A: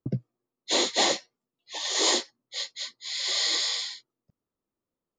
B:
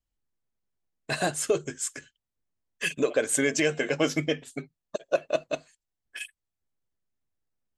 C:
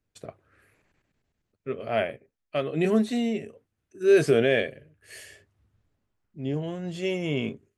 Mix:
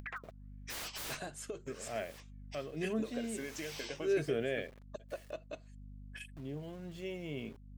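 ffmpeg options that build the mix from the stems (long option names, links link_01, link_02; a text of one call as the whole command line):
ffmpeg -i stem1.wav -i stem2.wav -i stem3.wav -filter_complex "[0:a]aeval=exprs='0.0447*(abs(mod(val(0)/0.0447+3,4)-2)-1)':channel_layout=same,aeval=exprs='val(0)*sin(2*PI*1500*n/s+1500*0.35/1.7*sin(2*PI*1.7*n/s))':channel_layout=same,volume=-4.5dB[link_01];[1:a]acompressor=threshold=-25dB:ratio=6,volume=-13.5dB[link_02];[2:a]aeval=exprs='val(0)*gte(abs(val(0)),0.0075)':channel_layout=same,aeval=exprs='val(0)+0.00708*(sin(2*PI*50*n/s)+sin(2*PI*2*50*n/s)/2+sin(2*PI*3*50*n/s)/3+sin(2*PI*4*50*n/s)/4+sin(2*PI*5*50*n/s)/5)':channel_layout=same,volume=-13.5dB,asplit=2[link_03][link_04];[link_04]apad=whole_len=228773[link_05];[link_01][link_05]sidechaincompress=threshold=-55dB:ratio=8:attack=22:release=484[link_06];[link_06][link_02][link_03]amix=inputs=3:normalize=0,equalizer=frequency=9100:width=0.57:gain=-3.5,acompressor=mode=upward:threshold=-41dB:ratio=2.5" out.wav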